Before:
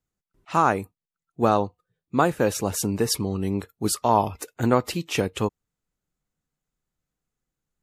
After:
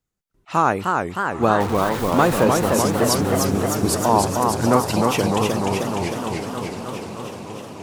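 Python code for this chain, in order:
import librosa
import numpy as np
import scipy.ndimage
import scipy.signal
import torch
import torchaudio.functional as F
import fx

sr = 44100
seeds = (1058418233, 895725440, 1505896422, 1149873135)

y = fx.zero_step(x, sr, step_db=-25.5, at=(1.6, 2.44))
y = fx.echo_diffused(y, sr, ms=931, feedback_pct=53, wet_db=-12.5)
y = fx.echo_warbled(y, sr, ms=304, feedback_pct=76, rate_hz=2.8, cents=191, wet_db=-3.5)
y = y * 10.0 ** (2.0 / 20.0)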